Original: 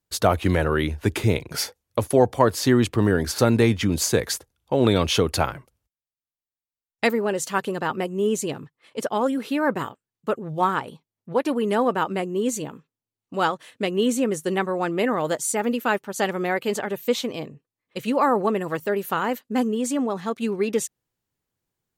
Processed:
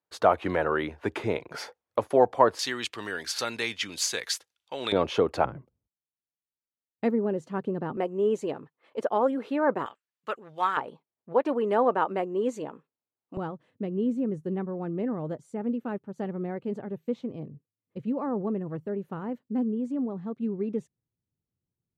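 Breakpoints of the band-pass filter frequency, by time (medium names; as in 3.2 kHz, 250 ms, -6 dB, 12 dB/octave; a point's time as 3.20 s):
band-pass filter, Q 0.78
860 Hz
from 2.59 s 3.4 kHz
from 4.92 s 630 Hz
from 5.45 s 210 Hz
from 7.97 s 630 Hz
from 9.86 s 2.2 kHz
from 10.77 s 680 Hz
from 13.37 s 120 Hz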